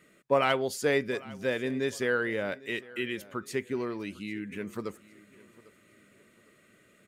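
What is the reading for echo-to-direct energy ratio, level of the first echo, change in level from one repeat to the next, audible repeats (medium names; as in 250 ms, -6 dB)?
-20.5 dB, -21.0 dB, -9.0 dB, 2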